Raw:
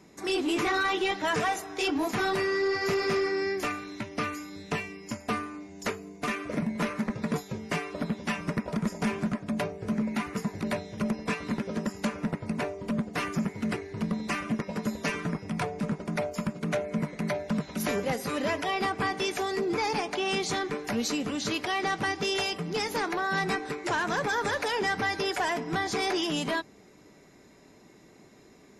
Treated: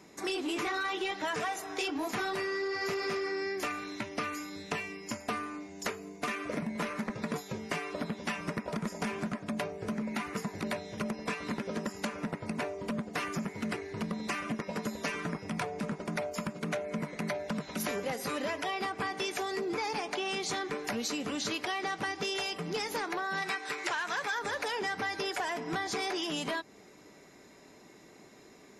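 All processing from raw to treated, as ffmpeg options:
-filter_complex "[0:a]asettb=1/sr,asplit=3[s0][s1][s2];[s0]atrim=end=23.424[s3];[s1]atrim=start=23.42:end=24.39,asetpts=PTS-STARTPTS,afade=t=in:d=0.004:c=qsin,afade=t=out:st=0.966:d=0.004:c=qsin,acrossover=split=4200[s4][s5];[s5]acompressor=threshold=0.00447:ratio=4:attack=1:release=60[s6];[s4][s6]amix=inputs=2:normalize=0,tiltshelf=f=700:g=-8[s7];[s2]atrim=start=24.386[s8];[s3][s7]acrossfade=d=0.004:c1=hsin:c2=qsin[s9];[s9][s8]acrossfade=d=0.004:c1=qsin:c2=hsin,lowshelf=f=230:g=-8,acompressor=threshold=0.0224:ratio=6,volume=1.26"

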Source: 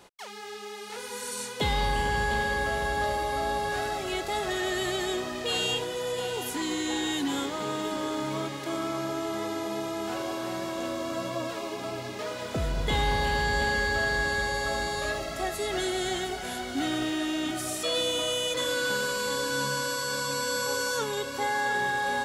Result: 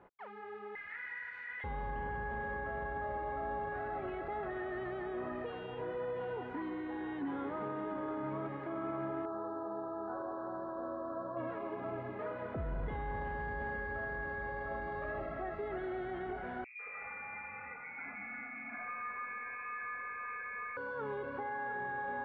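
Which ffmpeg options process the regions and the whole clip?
-filter_complex "[0:a]asettb=1/sr,asplit=3[s0][s1][s2];[s0]atrim=end=0.754[s3];[s1]atrim=start=0.75:end=1.64,asetpts=PTS-STARTPTS,afade=t=in:d=0.004:c=qsin,afade=t=out:st=0.886:d=0.004:c=qsin,highpass=f=1900:t=q:w=12,acrusher=bits=6:mix=0:aa=0.5[s4];[s2]atrim=start=1.636[s5];[s3][s4]acrossfade=d=0.004:c1=hsin:c2=qsin[s6];[s6][s5]acrossfade=d=0.004:c1=qsin:c2=hsin,asettb=1/sr,asplit=3[s7][s8][s9];[s7]atrim=end=9.254[s10];[s8]atrim=start=9.25:end=11.37,asetpts=PTS-STARTPTS,afade=t=in:d=0.004:c=qsin,afade=t=out:st=2.116:d=0.004:c=qsin,asuperstop=centerf=2500:order=8:qfactor=0.99,equalizer=f=140:w=0.51:g=-9[s11];[s9]atrim=start=11.366[s12];[s10][s11]acrossfade=d=0.004:c1=hsin:c2=qsin[s13];[s13][s12]acrossfade=d=0.004:c1=qsin:c2=hsin,asettb=1/sr,asplit=3[s14][s15][s16];[s14]atrim=end=16.644[s17];[s15]atrim=start=16.64:end=20.77,asetpts=PTS-STARTPTS,afade=t=in:d=0.004:c=qsin,afade=t=out:st=4.126:d=0.004:c=qsin,acrossover=split=550|1800[s18][s19][s20];[s19]adelay=150[s21];[s20]adelay=220[s22];[s18][s21][s22]amix=inputs=3:normalize=0,atrim=end_sample=182133,lowpass=f=2300:t=q:w=0.5098,lowpass=f=2300:t=q:w=0.6013,lowpass=f=2300:t=q:w=0.9,lowpass=f=2300:t=q:w=2.563,afreqshift=-2700[s23];[s16]atrim=start=20.766[s24];[s17][s23]acrossfade=d=0.004:c1=hsin:c2=qsin[s25];[s25][s24]acrossfade=d=0.004:c1=qsin:c2=hsin,alimiter=level_in=1.12:limit=0.0631:level=0:latency=1:release=29,volume=0.891,lowpass=f=1800:w=0.5412,lowpass=f=1800:w=1.3066,volume=0.562"

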